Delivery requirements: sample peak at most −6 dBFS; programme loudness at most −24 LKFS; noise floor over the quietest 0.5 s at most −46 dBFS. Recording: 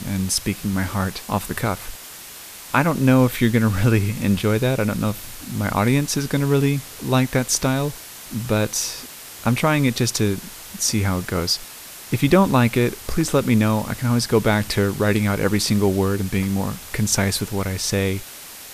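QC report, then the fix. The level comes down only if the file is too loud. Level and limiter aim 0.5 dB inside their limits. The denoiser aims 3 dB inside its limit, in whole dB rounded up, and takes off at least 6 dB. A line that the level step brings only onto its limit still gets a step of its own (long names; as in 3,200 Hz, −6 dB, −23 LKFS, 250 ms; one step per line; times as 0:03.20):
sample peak −4.0 dBFS: out of spec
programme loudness −20.5 LKFS: out of spec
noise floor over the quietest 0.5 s −39 dBFS: out of spec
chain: broadband denoise 6 dB, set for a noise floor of −39 dBFS
level −4 dB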